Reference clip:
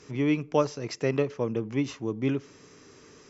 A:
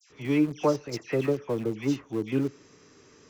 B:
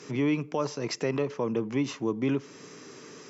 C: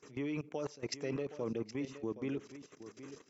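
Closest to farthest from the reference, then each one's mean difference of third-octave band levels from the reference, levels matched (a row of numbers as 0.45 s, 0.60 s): B, C, A; 3.5 dB, 4.5 dB, 8.5 dB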